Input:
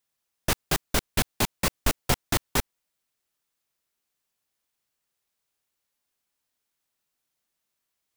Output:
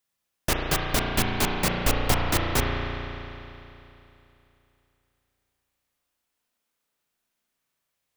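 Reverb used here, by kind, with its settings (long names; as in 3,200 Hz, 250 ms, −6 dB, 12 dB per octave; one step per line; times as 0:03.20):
spring reverb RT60 3 s, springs 34 ms, chirp 65 ms, DRR −1 dB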